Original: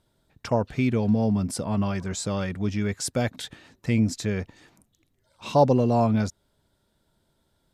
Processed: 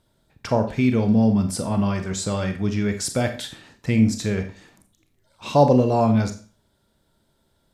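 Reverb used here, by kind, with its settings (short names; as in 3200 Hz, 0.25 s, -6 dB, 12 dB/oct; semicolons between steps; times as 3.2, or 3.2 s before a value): Schroeder reverb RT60 0.38 s, combs from 28 ms, DRR 6.5 dB; gain +2.5 dB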